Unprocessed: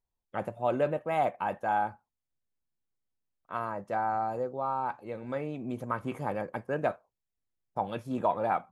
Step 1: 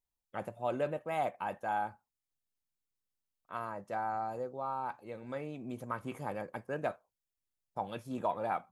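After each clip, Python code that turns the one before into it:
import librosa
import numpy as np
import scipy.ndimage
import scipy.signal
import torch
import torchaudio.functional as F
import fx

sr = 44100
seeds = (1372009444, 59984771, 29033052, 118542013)

y = fx.high_shelf(x, sr, hz=3600.0, db=7.5)
y = y * librosa.db_to_amplitude(-6.0)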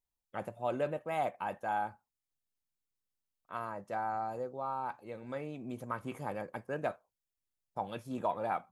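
y = x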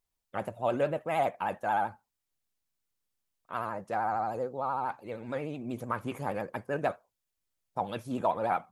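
y = fx.vibrato(x, sr, rate_hz=13.0, depth_cents=89.0)
y = y * librosa.db_to_amplitude(5.0)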